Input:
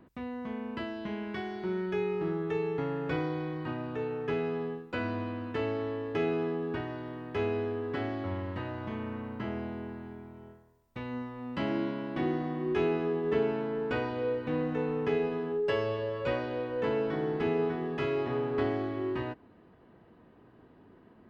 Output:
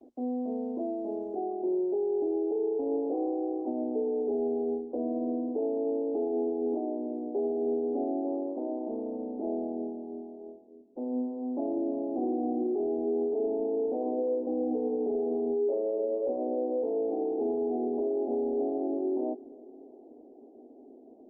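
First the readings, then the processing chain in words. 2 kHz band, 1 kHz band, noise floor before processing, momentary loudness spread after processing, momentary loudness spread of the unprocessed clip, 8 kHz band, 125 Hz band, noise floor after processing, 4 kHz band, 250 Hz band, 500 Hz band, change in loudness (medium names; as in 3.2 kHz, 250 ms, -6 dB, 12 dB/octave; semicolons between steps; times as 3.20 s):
under -40 dB, -1.5 dB, -58 dBFS, 6 LU, 9 LU, no reading, under -20 dB, -52 dBFS, under -35 dB, +3.0 dB, +2.5 dB, +2.0 dB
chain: self-modulated delay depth 0.086 ms; Chebyshev band-pass 240–800 Hz, order 5; peak limiter -30 dBFS, peak gain reduction 11 dB; vibrato 0.37 Hz 28 cents; on a send: bucket-brigade echo 305 ms, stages 1024, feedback 72%, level -20.5 dB; on the sum: trim +7 dB; Opus 24 kbps 48 kHz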